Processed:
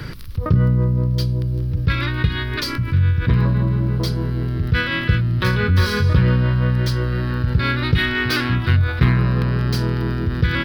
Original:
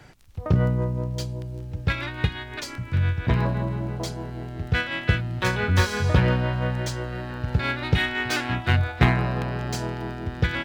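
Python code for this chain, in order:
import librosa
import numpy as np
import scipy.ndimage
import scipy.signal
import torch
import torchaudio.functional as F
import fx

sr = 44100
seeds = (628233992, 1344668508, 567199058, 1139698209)

y = fx.curve_eq(x, sr, hz=(160.0, 230.0, 510.0, 750.0, 1100.0, 2600.0, 4900.0, 7100.0, 11000.0), db=(0, -3, -6, -20, -4, -8, -2, -20, -3))
y = fx.env_flatten(y, sr, amount_pct=50)
y = y * librosa.db_to_amplitude(3.0)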